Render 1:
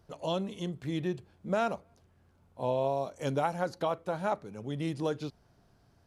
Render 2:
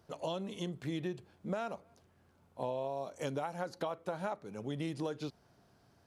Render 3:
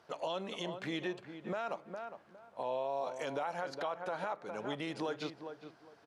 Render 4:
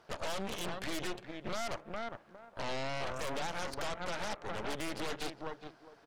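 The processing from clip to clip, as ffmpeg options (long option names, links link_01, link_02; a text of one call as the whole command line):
ffmpeg -i in.wav -af "highpass=frequency=150:poles=1,acompressor=threshold=-34dB:ratio=10,volume=1dB" out.wav
ffmpeg -i in.wav -filter_complex "[0:a]bandpass=frequency=1600:width_type=q:width=0.51:csg=0,asplit=2[link_01][link_02];[link_02]adelay=409,lowpass=frequency=1600:poles=1,volume=-10dB,asplit=2[link_03][link_04];[link_04]adelay=409,lowpass=frequency=1600:poles=1,volume=0.23,asplit=2[link_05][link_06];[link_06]adelay=409,lowpass=frequency=1600:poles=1,volume=0.23[link_07];[link_01][link_03][link_05][link_07]amix=inputs=4:normalize=0,alimiter=level_in=11dB:limit=-24dB:level=0:latency=1:release=60,volume=-11dB,volume=8dB" out.wav
ffmpeg -i in.wav -af "aeval=exprs='0.0473*(cos(1*acos(clip(val(0)/0.0473,-1,1)))-cos(1*PI/2))+0.0119*(cos(3*acos(clip(val(0)/0.0473,-1,1)))-cos(3*PI/2))+0.0133*(cos(5*acos(clip(val(0)/0.0473,-1,1)))-cos(5*PI/2))+0.0168*(cos(8*acos(clip(val(0)/0.0473,-1,1)))-cos(8*PI/2))':channel_layout=same,volume=-3dB" out.wav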